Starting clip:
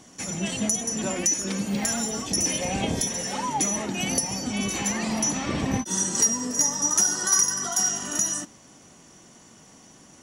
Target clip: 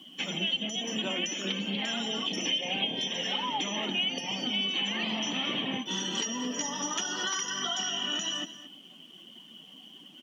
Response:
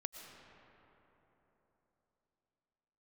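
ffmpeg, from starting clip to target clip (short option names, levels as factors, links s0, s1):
-filter_complex "[0:a]lowpass=f=3100:t=q:w=11,acrusher=bits=7:mix=0:aa=0.5,acompressor=threshold=0.0355:ratio=4,afftdn=nr=13:nf=-45,highpass=f=180:w=0.5412,highpass=f=180:w=1.3066,asplit=2[s0][s1];[s1]aecho=0:1:225:0.188[s2];[s0][s2]amix=inputs=2:normalize=0"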